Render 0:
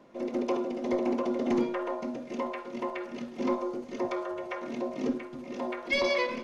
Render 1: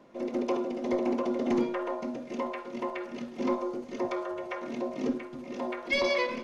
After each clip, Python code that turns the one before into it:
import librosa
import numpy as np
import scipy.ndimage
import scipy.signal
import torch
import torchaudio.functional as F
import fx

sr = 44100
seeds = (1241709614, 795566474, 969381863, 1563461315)

y = x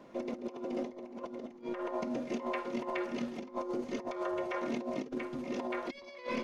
y = fx.over_compress(x, sr, threshold_db=-35.0, ratio=-0.5)
y = F.gain(torch.from_numpy(y), -2.0).numpy()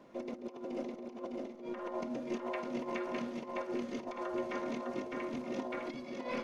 y = fx.echo_feedback(x, sr, ms=607, feedback_pct=37, wet_db=-3.5)
y = F.gain(torch.from_numpy(y), -3.5).numpy()